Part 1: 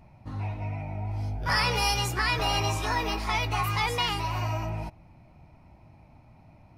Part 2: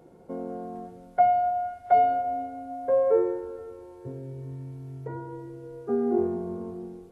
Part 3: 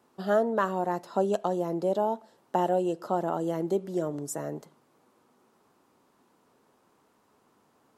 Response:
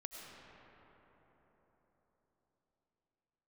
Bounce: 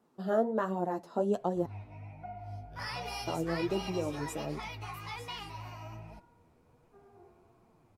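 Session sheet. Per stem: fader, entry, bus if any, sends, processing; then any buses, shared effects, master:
-10.5 dB, 1.30 s, no send, dry
-17.0 dB, 1.05 s, no send, HPF 850 Hz 12 dB/oct
-1.5 dB, 0.00 s, muted 1.66–3.27, no send, tilt shelf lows +4 dB, about 660 Hz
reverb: off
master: flange 1.3 Hz, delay 4 ms, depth 9.7 ms, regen +31%

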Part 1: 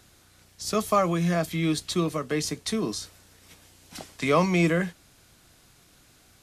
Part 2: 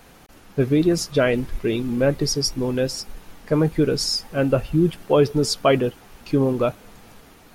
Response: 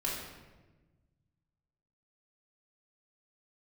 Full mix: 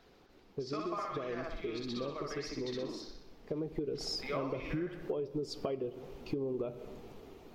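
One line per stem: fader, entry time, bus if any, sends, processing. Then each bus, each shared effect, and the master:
0.0 dB, 0.00 s, no send, echo send -10.5 dB, elliptic band-pass 220–5100 Hz; harmonic-percussive split harmonic -18 dB; auto duck -10 dB, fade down 0.90 s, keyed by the second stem
3.2 s -16.5 dB -> 3.99 s -7 dB, 0.00 s, send -18.5 dB, no echo send, fifteen-band EQ 400 Hz +10 dB, 1600 Hz -8 dB, 10000 Hz -9 dB; compressor, threshold -19 dBFS, peak gain reduction 14 dB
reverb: on, RT60 1.2 s, pre-delay 3 ms
echo: feedback echo 62 ms, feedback 55%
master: high shelf 4400 Hz -7.5 dB; compressor 6:1, threshold -33 dBFS, peak gain reduction 10.5 dB

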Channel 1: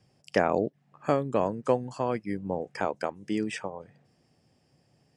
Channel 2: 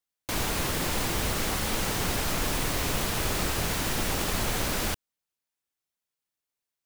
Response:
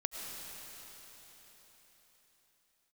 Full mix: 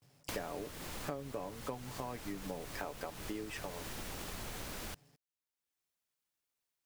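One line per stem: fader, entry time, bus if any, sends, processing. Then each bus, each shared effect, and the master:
-3.5 dB, 0.00 s, no send, gate with hold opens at -57 dBFS; comb 7 ms, depth 55%; bit-crush 11-bit
-0.5 dB, 0.00 s, no send, auto duck -13 dB, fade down 0.90 s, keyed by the first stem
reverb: off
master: compressor 5:1, threshold -39 dBFS, peak gain reduction 17.5 dB

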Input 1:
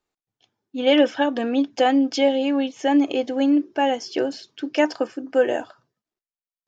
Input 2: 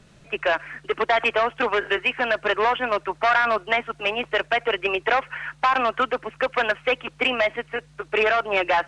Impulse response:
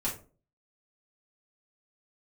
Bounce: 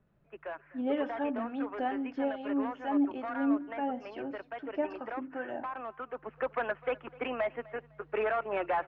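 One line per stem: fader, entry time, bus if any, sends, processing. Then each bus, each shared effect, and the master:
-8.5 dB, 0.00 s, send -12.5 dB, no echo send, bell 460 Hz -14 dB 0.42 oct; harmonic tremolo 2.3 Hz, depth 70%, crossover 750 Hz
6.06 s -17.5 dB -> 6.3 s -8.5 dB, 0.00 s, no send, echo send -22 dB, dry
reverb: on, RT60 0.40 s, pre-delay 4 ms
echo: feedback echo 0.253 s, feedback 27%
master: LPF 1400 Hz 12 dB/oct

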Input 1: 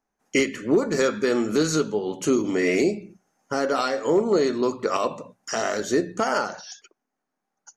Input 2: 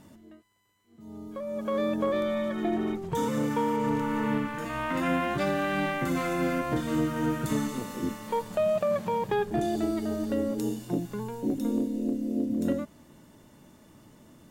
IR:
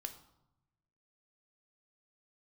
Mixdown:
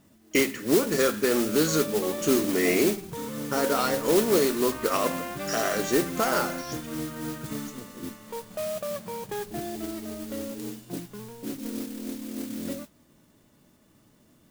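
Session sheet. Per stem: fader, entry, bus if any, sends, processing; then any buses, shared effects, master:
-2.0 dB, 0.00 s, no send, dry
-6.5 dB, 0.00 s, no send, dry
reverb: off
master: notch 900 Hz, Q 14; modulation noise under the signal 10 dB

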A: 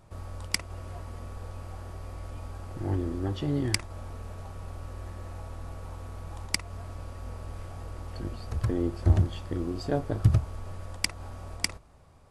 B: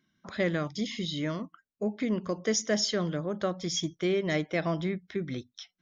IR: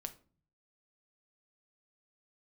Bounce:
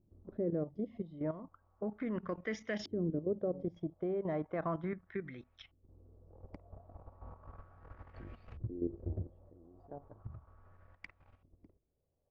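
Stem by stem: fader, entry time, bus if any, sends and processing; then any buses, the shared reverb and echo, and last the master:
9.01 s -10 dB -> 9.63 s -20.5 dB, 0.00 s, no send, auto duck -16 dB, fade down 0.50 s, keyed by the second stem
-4.5 dB, 0.00 s, no send, Bessel low-pass 7700 Hz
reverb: off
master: level quantiser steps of 12 dB; LFO low-pass saw up 0.35 Hz 300–2700 Hz

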